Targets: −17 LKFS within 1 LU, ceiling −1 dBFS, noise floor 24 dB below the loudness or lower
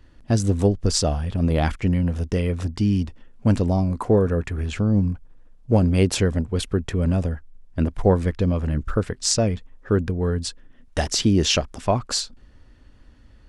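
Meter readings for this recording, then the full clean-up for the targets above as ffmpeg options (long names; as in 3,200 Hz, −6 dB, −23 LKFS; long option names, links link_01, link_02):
integrated loudness −22.5 LKFS; sample peak −2.5 dBFS; target loudness −17.0 LKFS
→ -af "volume=5.5dB,alimiter=limit=-1dB:level=0:latency=1"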